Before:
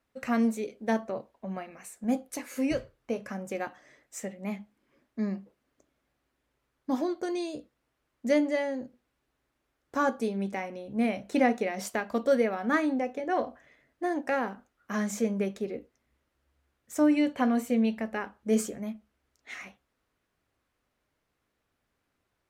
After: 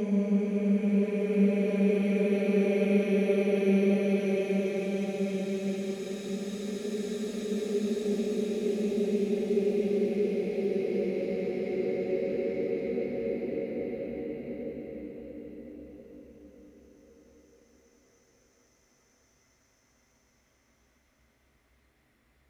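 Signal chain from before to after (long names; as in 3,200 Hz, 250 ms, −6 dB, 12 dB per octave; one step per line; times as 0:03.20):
in parallel at +3 dB: downward compressor, threshold −36 dBFS, peak gain reduction 16 dB
on the sum: extreme stretch with random phases 30×, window 0.25 s, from 0:15.33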